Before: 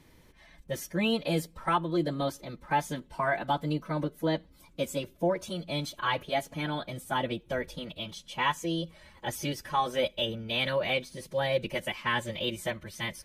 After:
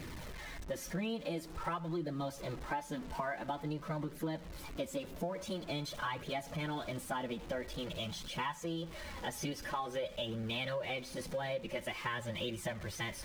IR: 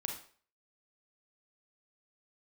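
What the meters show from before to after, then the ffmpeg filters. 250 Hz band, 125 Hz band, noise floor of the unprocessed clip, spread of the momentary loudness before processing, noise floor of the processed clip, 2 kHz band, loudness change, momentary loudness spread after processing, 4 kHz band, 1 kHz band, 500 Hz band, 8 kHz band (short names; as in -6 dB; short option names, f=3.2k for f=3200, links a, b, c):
-7.0 dB, -6.0 dB, -59 dBFS, 9 LU, -49 dBFS, -8.0 dB, -8.0 dB, 4 LU, -8.5 dB, -9.0 dB, -8.0 dB, -4.5 dB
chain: -filter_complex "[0:a]aeval=exprs='val(0)+0.5*0.0112*sgn(val(0))':c=same,asplit=2[a][b];[1:a]atrim=start_sample=2205,lowpass=f=3.3k:w=0.5412,lowpass=f=3.3k:w=1.3066[c];[b][c]afir=irnorm=-1:irlink=0,volume=-15.5dB[d];[a][d]amix=inputs=2:normalize=0,flanger=delay=0.4:depth=4.3:regen=-41:speed=0.48:shape=triangular,highshelf=f=7.7k:g=-7.5,acompressor=threshold=-36dB:ratio=6,volume=1dB"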